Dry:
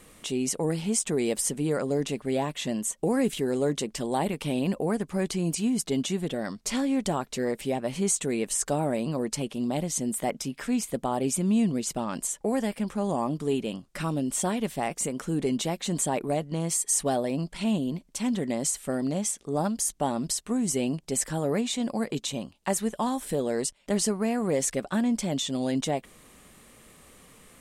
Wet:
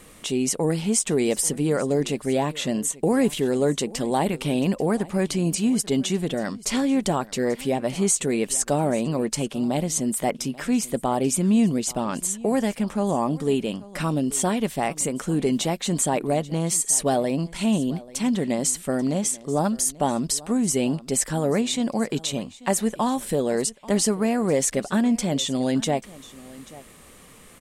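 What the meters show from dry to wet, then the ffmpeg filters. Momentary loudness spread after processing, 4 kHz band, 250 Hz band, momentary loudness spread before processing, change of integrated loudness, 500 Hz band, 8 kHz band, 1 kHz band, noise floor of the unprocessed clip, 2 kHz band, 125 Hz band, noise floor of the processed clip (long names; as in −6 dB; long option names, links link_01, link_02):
5 LU, +4.5 dB, +4.5 dB, 5 LU, +4.5 dB, +4.5 dB, +4.5 dB, +4.5 dB, −58 dBFS, +4.5 dB, +4.5 dB, −47 dBFS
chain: -af "aecho=1:1:837:0.1,volume=4.5dB"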